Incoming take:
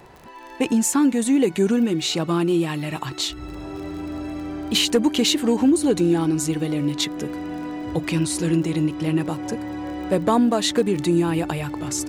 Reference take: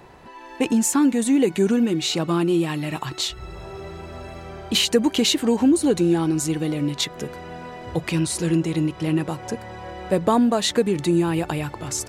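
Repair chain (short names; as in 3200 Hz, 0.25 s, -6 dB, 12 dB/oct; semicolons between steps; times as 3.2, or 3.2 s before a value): clip repair -10 dBFS; de-click; notch 300 Hz, Q 30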